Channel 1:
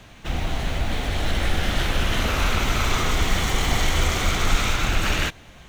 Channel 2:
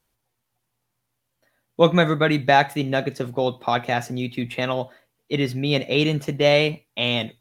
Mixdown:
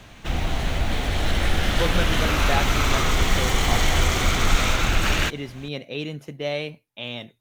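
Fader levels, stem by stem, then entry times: +1.0 dB, -10.5 dB; 0.00 s, 0.00 s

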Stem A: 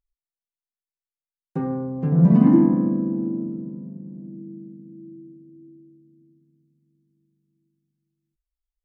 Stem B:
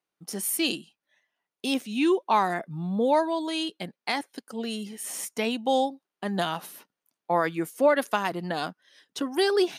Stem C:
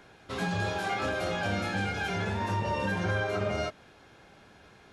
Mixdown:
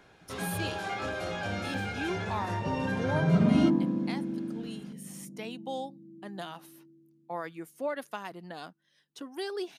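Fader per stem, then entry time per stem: -9.0 dB, -12.5 dB, -3.5 dB; 1.10 s, 0.00 s, 0.00 s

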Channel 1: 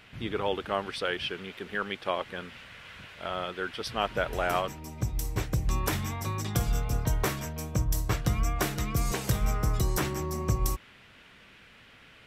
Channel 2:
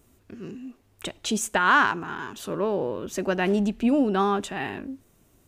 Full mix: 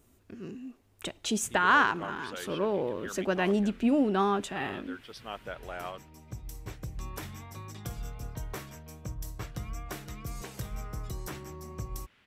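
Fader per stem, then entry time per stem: -11.0 dB, -3.5 dB; 1.30 s, 0.00 s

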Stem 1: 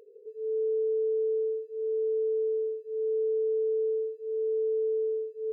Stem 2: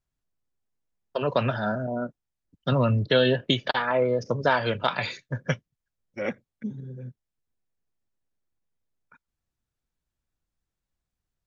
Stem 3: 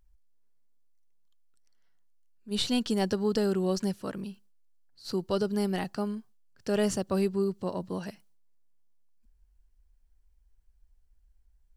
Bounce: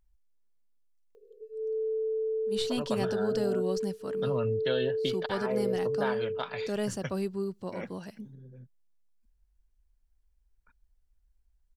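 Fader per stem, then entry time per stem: -3.0 dB, -11.0 dB, -5.0 dB; 1.15 s, 1.55 s, 0.00 s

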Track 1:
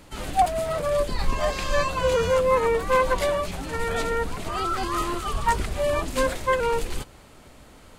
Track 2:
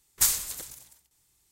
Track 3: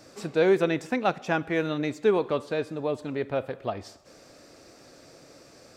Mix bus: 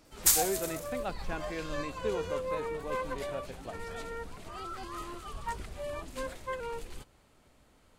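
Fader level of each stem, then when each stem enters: -14.5 dB, -1.0 dB, -12.5 dB; 0.00 s, 0.05 s, 0.00 s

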